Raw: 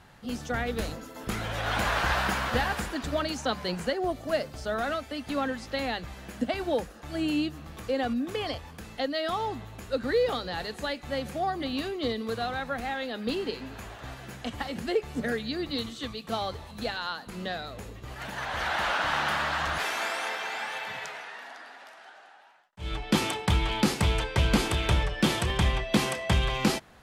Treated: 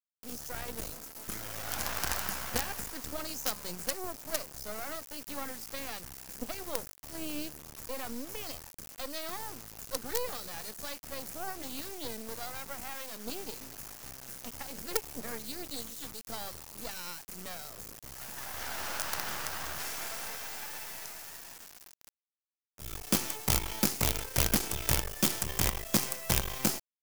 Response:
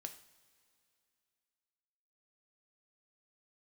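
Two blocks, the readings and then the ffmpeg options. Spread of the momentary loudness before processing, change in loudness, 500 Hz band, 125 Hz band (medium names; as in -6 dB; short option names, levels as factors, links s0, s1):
12 LU, -5.0 dB, -11.0 dB, -9.0 dB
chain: -af "acrusher=bits=4:dc=4:mix=0:aa=0.000001,aexciter=amount=2.6:drive=7:freq=5000,volume=0.447"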